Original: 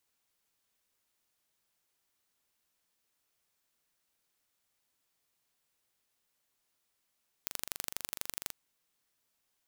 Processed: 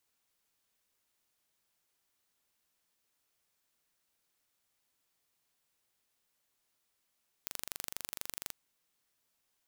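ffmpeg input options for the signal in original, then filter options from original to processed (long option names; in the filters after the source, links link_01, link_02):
-f lavfi -i "aevalsrc='0.447*eq(mod(n,1822),0)*(0.5+0.5*eq(mod(n,3644),0))':duration=1.05:sample_rate=44100"
-af "alimiter=limit=-10dB:level=0:latency=1:release=32"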